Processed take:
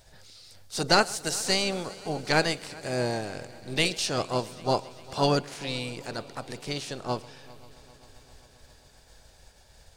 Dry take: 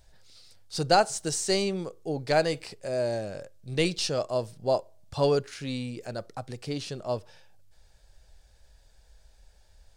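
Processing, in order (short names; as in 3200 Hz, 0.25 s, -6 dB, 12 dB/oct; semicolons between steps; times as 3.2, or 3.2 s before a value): spectral limiter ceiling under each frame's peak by 14 dB; harmoniser +5 st -16 dB; multi-head echo 0.132 s, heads first and third, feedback 74%, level -23 dB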